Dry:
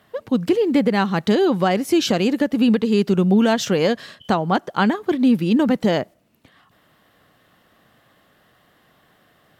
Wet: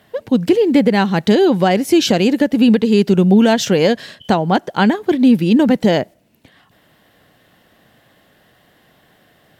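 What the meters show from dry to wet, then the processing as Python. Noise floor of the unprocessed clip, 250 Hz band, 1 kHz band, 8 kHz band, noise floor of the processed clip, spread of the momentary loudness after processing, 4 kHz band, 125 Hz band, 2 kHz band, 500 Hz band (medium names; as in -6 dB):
-59 dBFS, +5.0 dB, +3.5 dB, +5.0 dB, -55 dBFS, 6 LU, +5.0 dB, +5.0 dB, +4.0 dB, +5.0 dB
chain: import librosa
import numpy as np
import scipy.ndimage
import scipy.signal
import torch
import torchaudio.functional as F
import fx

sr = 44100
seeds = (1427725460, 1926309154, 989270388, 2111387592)

y = fx.peak_eq(x, sr, hz=1200.0, db=-8.0, octaves=0.36)
y = y * librosa.db_to_amplitude(5.0)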